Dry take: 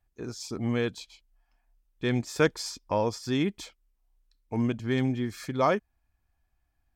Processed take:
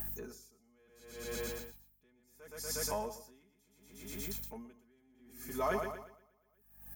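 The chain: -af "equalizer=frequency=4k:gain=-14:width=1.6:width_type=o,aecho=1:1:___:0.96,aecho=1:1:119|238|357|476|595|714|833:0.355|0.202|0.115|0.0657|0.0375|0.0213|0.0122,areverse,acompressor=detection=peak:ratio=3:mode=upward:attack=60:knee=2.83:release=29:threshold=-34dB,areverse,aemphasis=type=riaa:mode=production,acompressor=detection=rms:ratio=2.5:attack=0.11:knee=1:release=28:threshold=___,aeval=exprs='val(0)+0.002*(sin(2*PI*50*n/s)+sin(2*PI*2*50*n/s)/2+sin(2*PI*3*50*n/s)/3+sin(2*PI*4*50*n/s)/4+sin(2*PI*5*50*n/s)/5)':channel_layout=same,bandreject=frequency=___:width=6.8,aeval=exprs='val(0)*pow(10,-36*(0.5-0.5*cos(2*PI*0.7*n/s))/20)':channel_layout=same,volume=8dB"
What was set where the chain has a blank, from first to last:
4.7, -44dB, 7.9k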